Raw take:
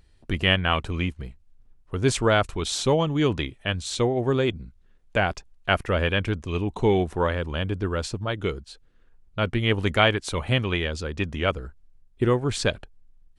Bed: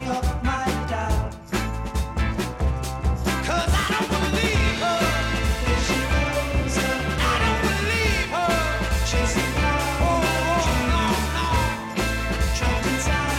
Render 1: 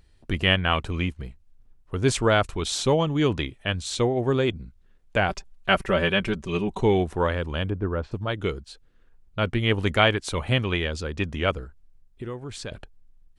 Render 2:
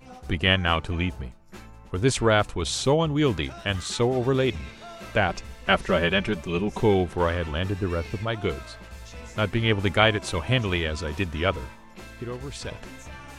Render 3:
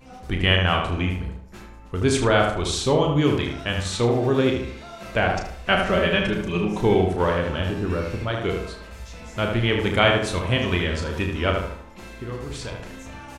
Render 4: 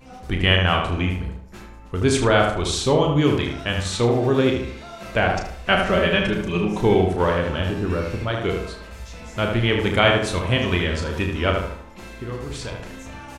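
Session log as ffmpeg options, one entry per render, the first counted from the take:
-filter_complex "[0:a]asettb=1/sr,asplit=3[s0][s1][s2];[s0]atrim=end=5.284[s3];[s1]atrim=start=5.28:end=6.81,asetpts=PTS-STARTPTS,afade=t=in:d=0.004:c=qsin,afade=t=out:st=1.526:d=0.004:c=qsin,aecho=1:1:5.2:0.75,atrim=end_sample=67473[s4];[s2]atrim=start=6.806[s5];[s3][s4]acrossfade=d=0.004:c1=hsin:c2=qsin[s6];[s6][s5]acrossfade=d=0.004:c1=qsin:c2=hsin,asplit=3[s7][s8][s9];[s7]afade=t=out:st=7.69:d=0.02[s10];[s8]lowpass=1400,afade=t=in:st=7.69:d=0.02,afade=t=out:st=8.11:d=0.02[s11];[s9]afade=t=in:st=8.11:d=0.02[s12];[s10][s11][s12]amix=inputs=3:normalize=0,asettb=1/sr,asplit=3[s13][s14][s15];[s13]atrim=end=11.644[s16];[s14]atrim=start=11.64:end=12.72,asetpts=PTS-STARTPTS,afade=t=in:d=0.004:c=qsin,afade=t=out:st=1.076:d=0.004:c=qsin,acompressor=threshold=0.00891:ratio=2:attack=3.2:release=140:knee=1:detection=peak[s17];[s15]atrim=start=12.716[s18];[s16][s17]acrossfade=d=0.004:c1=hsin:c2=qsin[s19];[s19][s18]acrossfade=d=0.004:c1=qsin:c2=hsin"
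-filter_complex "[1:a]volume=0.106[s0];[0:a][s0]amix=inputs=2:normalize=0"
-filter_complex "[0:a]asplit=2[s0][s1];[s1]adelay=34,volume=0.473[s2];[s0][s2]amix=inputs=2:normalize=0,asplit=2[s3][s4];[s4]adelay=76,lowpass=f=2400:p=1,volume=0.668,asplit=2[s5][s6];[s6]adelay=76,lowpass=f=2400:p=1,volume=0.45,asplit=2[s7][s8];[s8]adelay=76,lowpass=f=2400:p=1,volume=0.45,asplit=2[s9][s10];[s10]adelay=76,lowpass=f=2400:p=1,volume=0.45,asplit=2[s11][s12];[s12]adelay=76,lowpass=f=2400:p=1,volume=0.45,asplit=2[s13][s14];[s14]adelay=76,lowpass=f=2400:p=1,volume=0.45[s15];[s5][s7][s9][s11][s13][s15]amix=inputs=6:normalize=0[s16];[s3][s16]amix=inputs=2:normalize=0"
-af "volume=1.19,alimiter=limit=0.794:level=0:latency=1"

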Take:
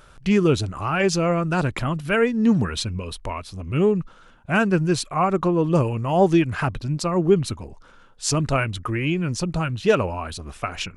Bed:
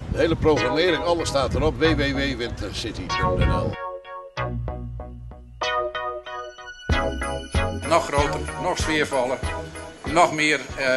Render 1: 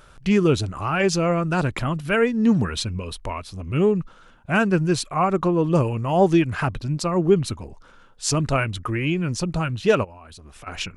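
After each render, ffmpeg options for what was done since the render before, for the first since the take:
-filter_complex "[0:a]asplit=3[s0][s1][s2];[s0]afade=t=out:st=10.03:d=0.02[s3];[s1]acompressor=threshold=0.0112:ratio=16:attack=3.2:release=140:knee=1:detection=peak,afade=t=in:st=10.03:d=0.02,afade=t=out:st=10.66:d=0.02[s4];[s2]afade=t=in:st=10.66:d=0.02[s5];[s3][s4][s5]amix=inputs=3:normalize=0"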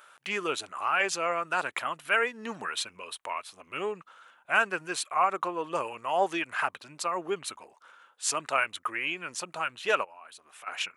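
-af "highpass=890,equalizer=f=5100:t=o:w=0.85:g=-8"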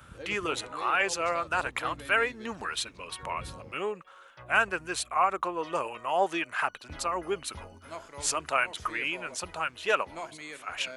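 -filter_complex "[1:a]volume=0.0708[s0];[0:a][s0]amix=inputs=2:normalize=0"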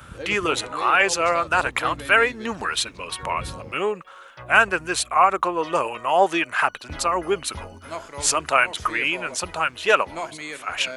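-af "volume=2.66"

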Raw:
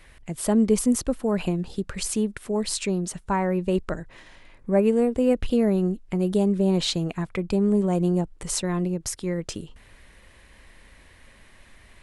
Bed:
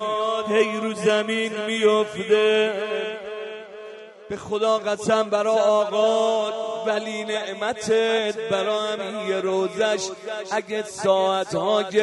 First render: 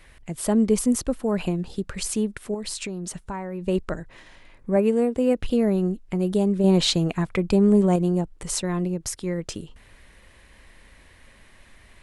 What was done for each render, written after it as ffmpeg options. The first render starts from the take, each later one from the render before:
-filter_complex "[0:a]asettb=1/sr,asplit=3[s0][s1][s2];[s0]atrim=end=2.544[s3];[s1]atrim=start=2.54:end=3.64,asetpts=PTS-STARTPTS,afade=t=in:d=0.004:c=qsin,afade=t=out:st=1.096:d=0.004:c=qsin,acompressor=threshold=0.0447:ratio=10:attack=3.2:release=140:knee=1:detection=peak[s4];[s2]atrim=start=3.636[s5];[s3][s4]acrossfade=d=0.004:c1=hsin:c2=qsin[s6];[s6][s5]acrossfade=d=0.004:c1=qsin:c2=hsin,asettb=1/sr,asplit=3[s7][s8][s9];[s7]atrim=end=4.764[s10];[s8]atrim=start=4.76:end=5.44,asetpts=PTS-STARTPTS,afade=t=in:d=0.004:c=qsin,afade=t=out:st=0.676:d=0.004:c=qsin,highpass=f=83:p=1[s11];[s9]atrim=start=5.436[s12];[s10][s11]acrossfade=d=0.004:c1=hsin:c2=qsin[s13];[s13][s12]acrossfade=d=0.004:c1=qsin:c2=hsin,asplit=3[s14][s15][s16];[s14]atrim=end=6.642[s17];[s15]atrim=start=6.638:end=7.962,asetpts=PTS-STARTPTS,volume=1.58[s18];[s16]atrim=start=7.958[s19];[s17][s18]acrossfade=d=0.004:c1=hsin:c2=hsin[s20];[s20][s19]acrossfade=d=0.004:c1=hsin:c2=hsin"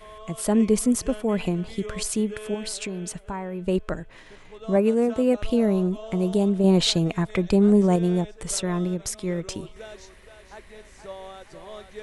-filter_complex "[1:a]volume=0.1[s0];[0:a][s0]amix=inputs=2:normalize=0"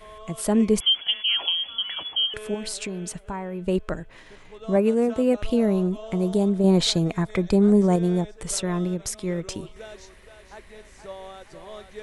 -filter_complex "[0:a]asettb=1/sr,asplit=3[s0][s1][s2];[s0]atrim=end=0.804[s3];[s1]atrim=start=0.8:end=2.34,asetpts=PTS-STARTPTS,afade=t=in:d=0.004:c=qsin,afade=t=out:st=1.536:d=0.004:c=qsin,lowpass=f=2900:t=q:w=0.5098,lowpass=f=2900:t=q:w=0.6013,lowpass=f=2900:t=q:w=0.9,lowpass=f=2900:t=q:w=2.563,afreqshift=-3400[s4];[s2]atrim=start=2.336[s5];[s3][s4]acrossfade=d=0.004:c1=hsin:c2=qsin[s6];[s6][s5]acrossfade=d=0.004:c1=qsin:c2=hsin,asettb=1/sr,asplit=3[s7][s8][s9];[s7]atrim=end=6.184[s10];[s8]atrim=start=6.18:end=8.37,asetpts=PTS-STARTPTS,afade=t=in:d=0.004:c=qsin,afade=t=out:st=2.186:d=0.004:c=qsin,equalizer=f=2800:t=o:w=0.22:g=-8[s11];[s9]atrim=start=8.366[s12];[s10][s11]acrossfade=d=0.004:c1=hsin:c2=qsin[s13];[s13][s12]acrossfade=d=0.004:c1=qsin:c2=hsin"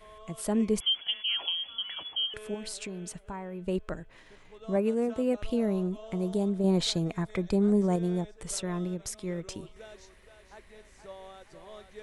-af "volume=0.447"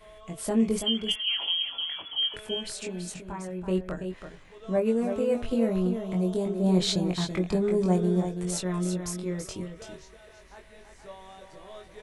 -filter_complex "[0:a]asplit=2[s0][s1];[s1]adelay=22,volume=0.668[s2];[s0][s2]amix=inputs=2:normalize=0,aecho=1:1:331:0.422"

